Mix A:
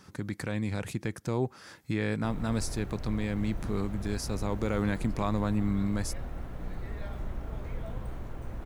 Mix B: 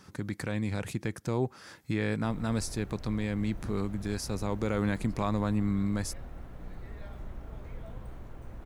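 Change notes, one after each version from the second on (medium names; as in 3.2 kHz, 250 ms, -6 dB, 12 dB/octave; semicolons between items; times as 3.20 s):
background -5.5 dB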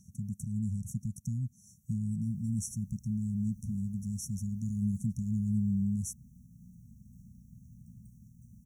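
background: add high-pass 140 Hz 12 dB/octave; master: add brick-wall FIR band-stop 240–5500 Hz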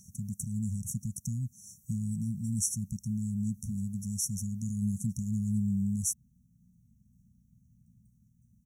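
speech: add treble shelf 2.7 kHz +10.5 dB; background -10.0 dB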